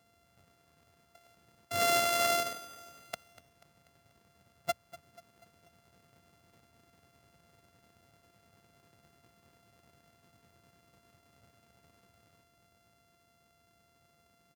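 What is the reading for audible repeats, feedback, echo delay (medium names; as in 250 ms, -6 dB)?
4, 53%, 243 ms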